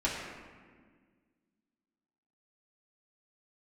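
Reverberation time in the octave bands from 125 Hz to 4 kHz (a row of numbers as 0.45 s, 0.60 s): 2.1 s, 2.4 s, 1.8 s, 1.5 s, 1.5 s, 1.0 s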